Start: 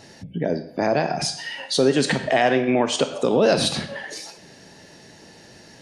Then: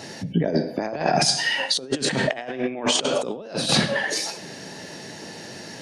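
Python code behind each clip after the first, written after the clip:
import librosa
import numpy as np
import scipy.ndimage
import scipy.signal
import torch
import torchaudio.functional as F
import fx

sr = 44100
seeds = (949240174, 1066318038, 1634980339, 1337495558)

y = scipy.signal.sosfilt(scipy.signal.butter(2, 120.0, 'highpass', fs=sr, output='sos'), x)
y = y + 10.0 ** (-22.0 / 20.0) * np.pad(y, (int(98 * sr / 1000.0), 0))[:len(y)]
y = fx.over_compress(y, sr, threshold_db=-26.0, ratio=-0.5)
y = y * 10.0 ** (3.5 / 20.0)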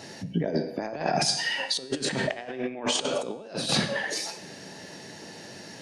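y = fx.comb_fb(x, sr, f0_hz=96.0, decay_s=0.86, harmonics='all', damping=0.0, mix_pct=50)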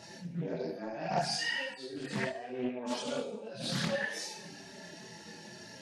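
y = fx.hpss_only(x, sr, part='harmonic')
y = fx.chorus_voices(y, sr, voices=6, hz=1.2, base_ms=26, depth_ms=3.0, mix_pct=55)
y = fx.doppler_dist(y, sr, depth_ms=0.39)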